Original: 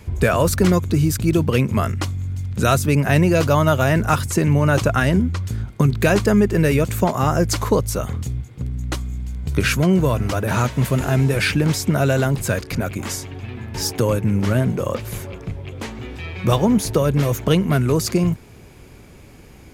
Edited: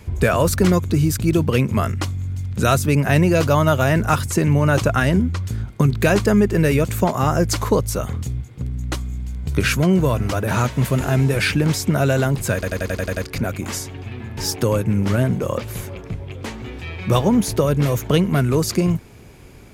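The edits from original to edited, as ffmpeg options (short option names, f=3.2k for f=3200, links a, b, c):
-filter_complex "[0:a]asplit=8[a][b][c][d][e][f][g][h];[a]atrim=end=12.632[i];[b]atrim=start=12.538:end=12.632[j];[c]atrim=start=12.538:end=12.632[k];[d]atrim=start=12.538:end=12.632[l];[e]atrim=start=12.538:end=12.632[m];[f]atrim=start=12.538:end=12.632[n];[g]atrim=start=12.538:end=12.632[o];[h]atrim=start=12.538[p];[i][j]acrossfade=d=0.004:c1=hsin:c2=hsin[q];[q][k]acrossfade=d=0.004:c1=hsin:c2=hsin[r];[r][l]acrossfade=d=0.004:c1=hsin:c2=hsin[s];[s][m]acrossfade=d=0.004:c1=hsin:c2=hsin[t];[t][n]acrossfade=d=0.004:c1=hsin:c2=hsin[u];[u][o]acrossfade=d=0.004:c1=hsin:c2=hsin[v];[v][p]acrossfade=d=0.004:c1=hsin:c2=hsin"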